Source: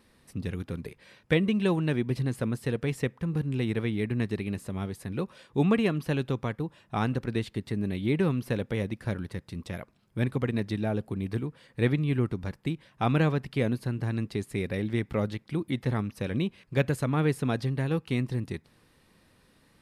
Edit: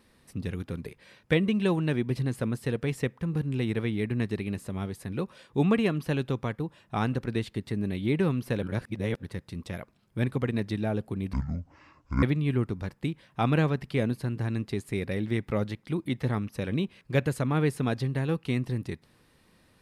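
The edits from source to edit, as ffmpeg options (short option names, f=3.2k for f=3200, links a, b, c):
-filter_complex "[0:a]asplit=5[a][b][c][d][e];[a]atrim=end=8.632[f];[b]atrim=start=8.628:end=9.232,asetpts=PTS-STARTPTS,areverse[g];[c]atrim=start=9.228:end=11.334[h];[d]atrim=start=11.33:end=11.85,asetpts=PTS-STARTPTS,asetrate=25578,aresample=44100[i];[e]atrim=start=11.846[j];[f][g]acrossfade=d=0.004:c1=hsin:c2=hsin[k];[k][h]acrossfade=d=0.004:c1=hsin:c2=hsin[l];[l][i]acrossfade=d=0.004:c1=hsin:c2=hsin[m];[m][j]acrossfade=d=0.004:c1=hsin:c2=hsin"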